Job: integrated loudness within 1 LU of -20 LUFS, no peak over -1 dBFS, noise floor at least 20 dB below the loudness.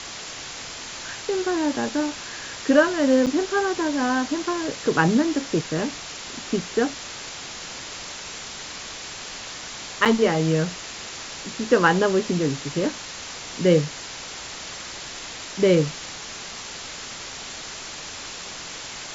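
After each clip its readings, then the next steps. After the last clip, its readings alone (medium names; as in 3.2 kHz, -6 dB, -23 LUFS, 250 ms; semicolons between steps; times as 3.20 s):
dropouts 2; longest dropout 7.3 ms; noise floor -37 dBFS; noise floor target -45 dBFS; loudness -25.0 LUFS; peak level -4.0 dBFS; loudness target -20.0 LUFS
-> interpolate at 3.26/10.05 s, 7.3 ms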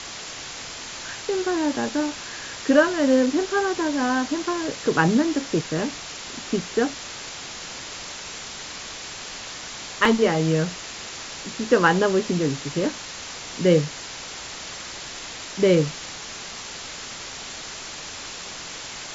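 dropouts 0; noise floor -37 dBFS; noise floor target -45 dBFS
-> noise reduction 8 dB, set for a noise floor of -37 dBFS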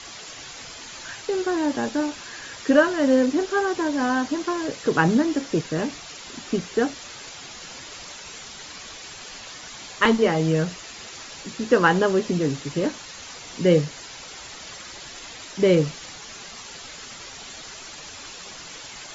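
noise floor -40 dBFS; noise floor target -43 dBFS
-> noise reduction 6 dB, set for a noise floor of -40 dBFS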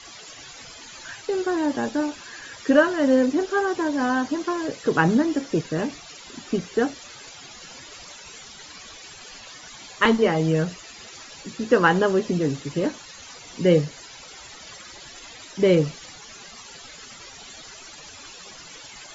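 noise floor -43 dBFS; loudness -22.5 LUFS; peak level -4.0 dBFS; loudness target -20.0 LUFS
-> trim +2.5 dB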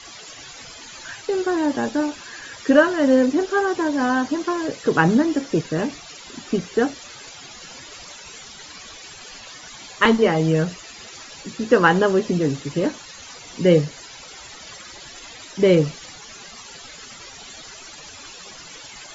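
loudness -20.0 LUFS; peak level -1.5 dBFS; noise floor -41 dBFS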